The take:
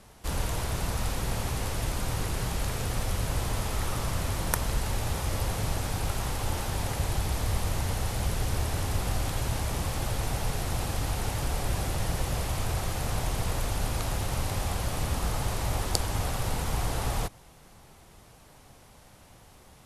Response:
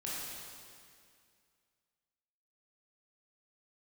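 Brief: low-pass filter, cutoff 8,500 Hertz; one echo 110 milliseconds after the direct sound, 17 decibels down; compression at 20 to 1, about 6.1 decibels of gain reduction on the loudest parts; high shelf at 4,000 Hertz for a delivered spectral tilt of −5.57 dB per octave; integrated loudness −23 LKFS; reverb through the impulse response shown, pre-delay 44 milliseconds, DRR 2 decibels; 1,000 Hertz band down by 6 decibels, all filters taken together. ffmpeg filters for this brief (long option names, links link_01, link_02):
-filter_complex "[0:a]lowpass=8500,equalizer=frequency=1000:width_type=o:gain=-7.5,highshelf=frequency=4000:gain=-9,acompressor=threshold=-30dB:ratio=20,aecho=1:1:110:0.141,asplit=2[link_01][link_02];[1:a]atrim=start_sample=2205,adelay=44[link_03];[link_02][link_03]afir=irnorm=-1:irlink=0,volume=-4.5dB[link_04];[link_01][link_04]amix=inputs=2:normalize=0,volume=13dB"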